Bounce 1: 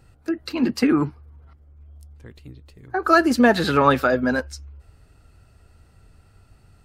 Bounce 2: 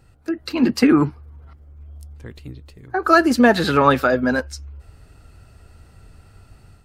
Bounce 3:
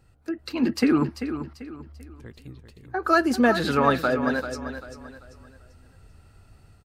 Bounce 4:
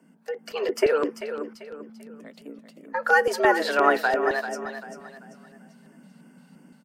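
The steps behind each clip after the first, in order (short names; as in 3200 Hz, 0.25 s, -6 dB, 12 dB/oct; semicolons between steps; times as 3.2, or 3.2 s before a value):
AGC gain up to 6 dB
feedback echo 0.391 s, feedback 35%, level -10 dB; gain -6 dB
frequency shift +150 Hz; LFO notch square 2.9 Hz 340–4000 Hz; gain +1 dB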